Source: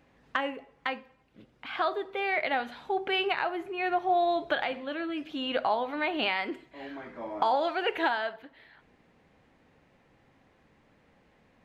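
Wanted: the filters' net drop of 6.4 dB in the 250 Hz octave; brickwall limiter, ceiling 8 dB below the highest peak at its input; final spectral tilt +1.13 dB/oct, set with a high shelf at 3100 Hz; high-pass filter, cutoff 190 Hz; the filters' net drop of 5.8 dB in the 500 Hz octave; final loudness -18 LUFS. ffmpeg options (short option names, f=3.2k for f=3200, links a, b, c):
-af "highpass=190,equalizer=f=250:t=o:g=-4.5,equalizer=f=500:t=o:g=-7,highshelf=f=3.1k:g=-7,volume=17.5dB,alimiter=limit=-6dB:level=0:latency=1"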